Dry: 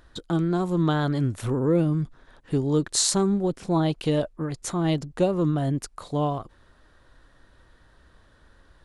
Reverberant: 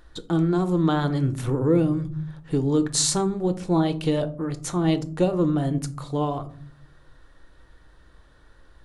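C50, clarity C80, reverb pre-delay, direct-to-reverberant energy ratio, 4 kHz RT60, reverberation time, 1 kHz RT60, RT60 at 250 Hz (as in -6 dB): 17.0 dB, 21.5 dB, 3 ms, 9.0 dB, 0.25 s, 0.50 s, 0.40 s, 0.95 s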